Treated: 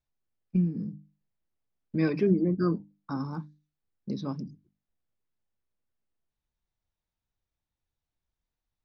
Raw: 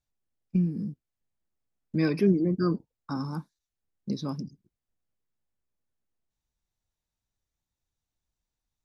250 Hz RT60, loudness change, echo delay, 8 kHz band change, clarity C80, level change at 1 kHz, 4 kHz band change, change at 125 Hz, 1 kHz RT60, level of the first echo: none, -1.0 dB, none, n/a, none, -0.5 dB, -5.5 dB, -1.0 dB, none, none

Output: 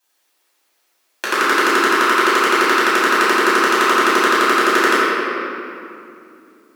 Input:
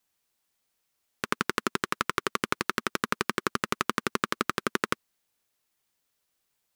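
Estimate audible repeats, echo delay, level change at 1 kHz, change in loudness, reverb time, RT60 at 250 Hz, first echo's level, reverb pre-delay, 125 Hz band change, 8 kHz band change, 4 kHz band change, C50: none, none, +17.0 dB, +16.0 dB, 2.6 s, 3.5 s, none, 3 ms, n/a, +12.5 dB, +14.5 dB, -4.0 dB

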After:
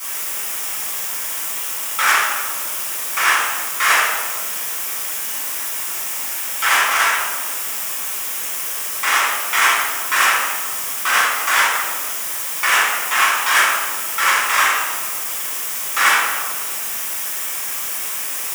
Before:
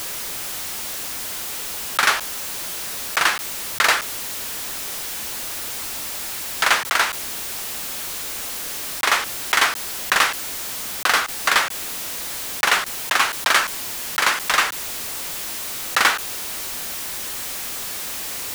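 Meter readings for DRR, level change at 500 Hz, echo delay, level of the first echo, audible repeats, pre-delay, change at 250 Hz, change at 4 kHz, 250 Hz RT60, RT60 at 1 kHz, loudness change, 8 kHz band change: -10.5 dB, 0.0 dB, none, none, none, 4 ms, -3.0 dB, +0.5 dB, 2.4 s, 1.5 s, +4.0 dB, +4.5 dB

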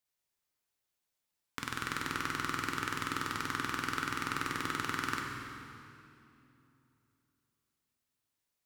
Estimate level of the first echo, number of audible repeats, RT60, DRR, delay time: none, none, 2.9 s, 0.0 dB, none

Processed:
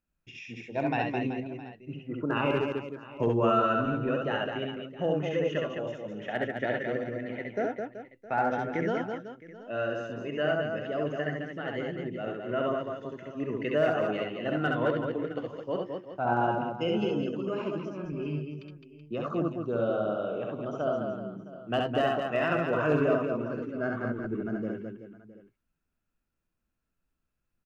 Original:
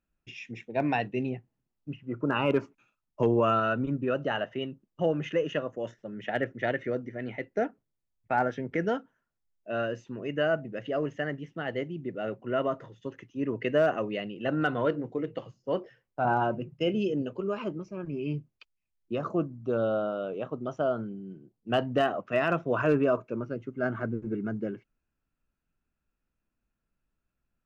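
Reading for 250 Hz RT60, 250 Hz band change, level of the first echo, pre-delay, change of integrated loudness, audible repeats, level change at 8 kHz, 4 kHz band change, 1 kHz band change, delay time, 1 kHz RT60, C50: none, 0.0 dB, -3.0 dB, none, -0.5 dB, 5, n/a, 0.0 dB, +0.5 dB, 67 ms, none, none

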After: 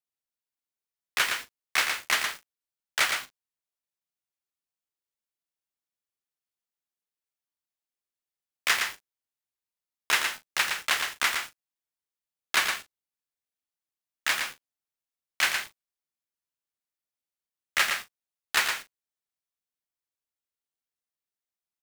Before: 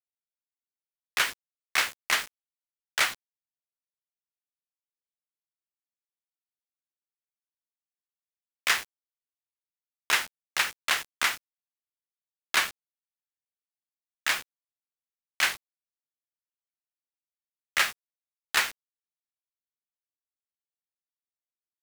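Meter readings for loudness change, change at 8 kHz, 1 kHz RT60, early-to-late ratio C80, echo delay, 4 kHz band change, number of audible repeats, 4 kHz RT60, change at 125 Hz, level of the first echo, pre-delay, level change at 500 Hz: +0.5 dB, +1.0 dB, none, none, 0.115 s, +1.0 dB, 2, none, n/a, -5.5 dB, none, +1.0 dB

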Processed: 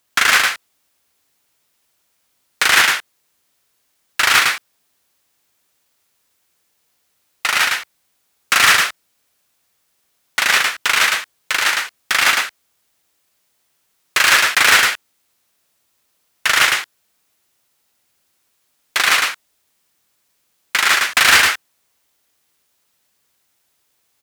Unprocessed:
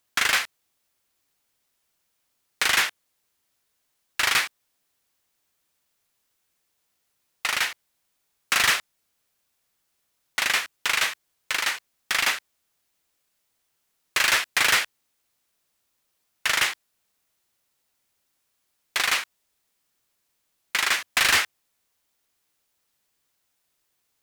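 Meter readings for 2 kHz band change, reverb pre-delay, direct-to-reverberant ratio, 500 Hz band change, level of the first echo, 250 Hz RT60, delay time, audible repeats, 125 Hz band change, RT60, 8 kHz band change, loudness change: +9.5 dB, none, none, +8.5 dB, -3.0 dB, none, 0.106 s, 1, n/a, none, +8.5 dB, +8.5 dB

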